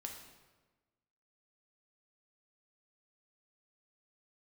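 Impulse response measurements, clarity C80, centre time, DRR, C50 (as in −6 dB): 7.0 dB, 36 ms, 1.5 dB, 5.0 dB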